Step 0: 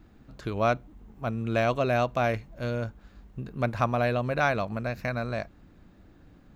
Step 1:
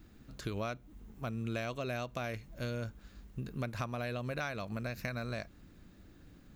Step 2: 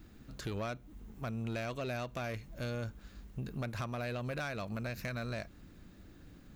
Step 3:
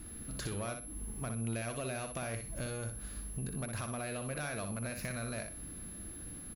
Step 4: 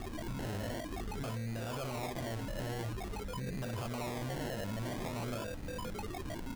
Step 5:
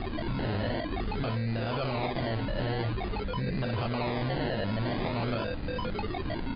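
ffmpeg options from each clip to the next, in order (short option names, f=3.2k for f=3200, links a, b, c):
-af "highshelf=f=4.3k:g=10.5,acompressor=threshold=-31dB:ratio=4,equalizer=f=800:t=o:w=1:g=-5,volume=-2.5dB"
-af "asoftclip=type=tanh:threshold=-33dB,volume=2dB"
-filter_complex "[0:a]acompressor=threshold=-43dB:ratio=4,aeval=exprs='val(0)+0.00178*sin(2*PI*11000*n/s)':c=same,asplit=2[a][b];[b]aecho=0:1:61|122|183:0.473|0.109|0.025[c];[a][c]amix=inputs=2:normalize=0,volume=5dB"
-af "flanger=delay=8.4:depth=3.3:regen=-41:speed=0.49:shape=triangular,acrusher=samples=29:mix=1:aa=0.000001:lfo=1:lforange=17.4:lforate=0.49,alimiter=level_in=19dB:limit=-24dB:level=0:latency=1:release=16,volume=-19dB,volume=10dB"
-af "volume=8.5dB" -ar 11025 -c:a libmp3lame -b:a 24k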